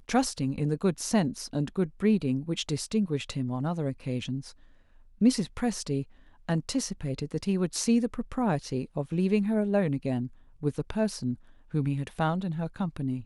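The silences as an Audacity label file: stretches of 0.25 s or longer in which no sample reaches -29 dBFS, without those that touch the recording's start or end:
4.390000	5.210000	silence
6.020000	6.490000	silence
10.260000	10.630000	silence
11.330000	11.740000	silence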